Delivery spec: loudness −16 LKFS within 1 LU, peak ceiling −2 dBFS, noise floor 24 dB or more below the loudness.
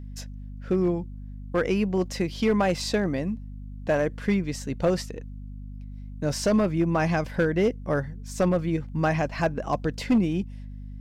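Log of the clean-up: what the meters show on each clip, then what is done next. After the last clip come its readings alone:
share of clipped samples 0.9%; peaks flattened at −15.5 dBFS; mains hum 50 Hz; hum harmonics up to 250 Hz; level of the hum −36 dBFS; integrated loudness −26.0 LKFS; sample peak −15.5 dBFS; target loudness −16.0 LKFS
→ clipped peaks rebuilt −15.5 dBFS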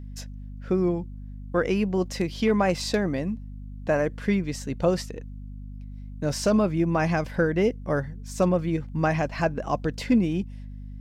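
share of clipped samples 0.0%; mains hum 50 Hz; hum harmonics up to 250 Hz; level of the hum −36 dBFS
→ hum removal 50 Hz, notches 5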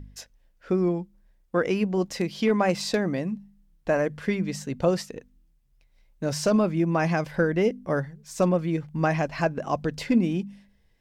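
mains hum none found; integrated loudness −26.0 LKFS; sample peak −9.0 dBFS; target loudness −16.0 LKFS
→ level +10 dB
brickwall limiter −2 dBFS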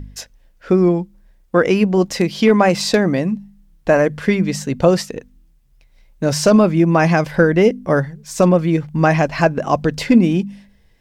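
integrated loudness −16.0 LKFS; sample peak −2.0 dBFS; background noise floor −54 dBFS

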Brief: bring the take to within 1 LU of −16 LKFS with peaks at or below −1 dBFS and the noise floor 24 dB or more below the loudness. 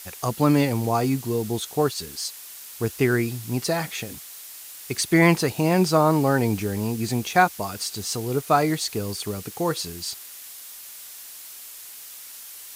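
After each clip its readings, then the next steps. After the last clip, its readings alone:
background noise floor −41 dBFS; target noise floor −48 dBFS; integrated loudness −23.5 LKFS; sample peak −3.5 dBFS; target loudness −16.0 LKFS
→ noise reduction from a noise print 7 dB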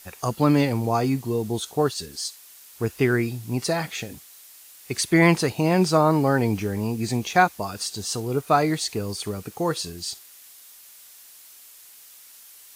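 background noise floor −48 dBFS; integrated loudness −23.5 LKFS; sample peak −3.5 dBFS; target loudness −16.0 LKFS
→ level +7.5 dB
brickwall limiter −1 dBFS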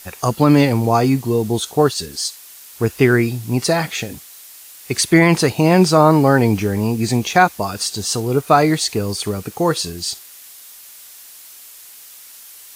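integrated loudness −16.5 LKFS; sample peak −1.0 dBFS; background noise floor −41 dBFS

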